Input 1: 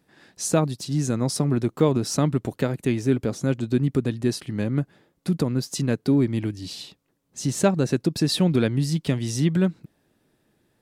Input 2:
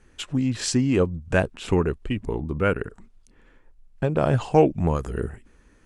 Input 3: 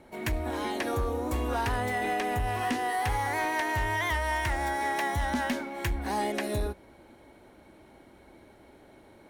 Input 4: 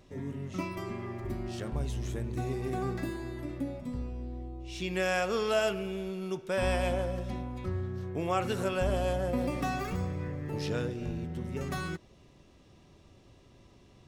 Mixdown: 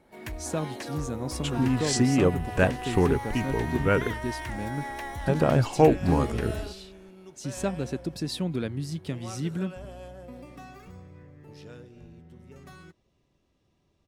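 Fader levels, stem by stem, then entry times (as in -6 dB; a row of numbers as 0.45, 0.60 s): -9.5, -1.5, -7.0, -13.0 dB; 0.00, 1.25, 0.00, 0.95 s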